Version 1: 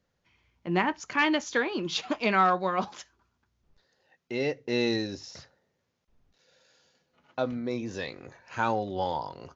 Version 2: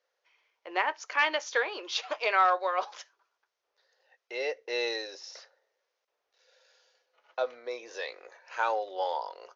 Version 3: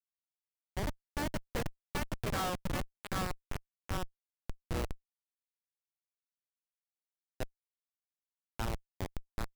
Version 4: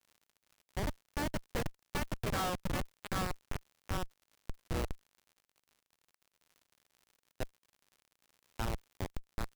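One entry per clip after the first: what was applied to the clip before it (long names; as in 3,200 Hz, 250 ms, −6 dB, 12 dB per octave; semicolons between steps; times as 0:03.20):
elliptic band-pass filter 480–6,100 Hz, stop band 40 dB
harmonic generator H 3 −22 dB, 7 −26 dB, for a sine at −10.5 dBFS; feedback echo with a band-pass in the loop 777 ms, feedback 66%, band-pass 1,700 Hz, level −3 dB; comparator with hysteresis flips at −27 dBFS; level +2.5 dB
surface crackle 89 per second −51 dBFS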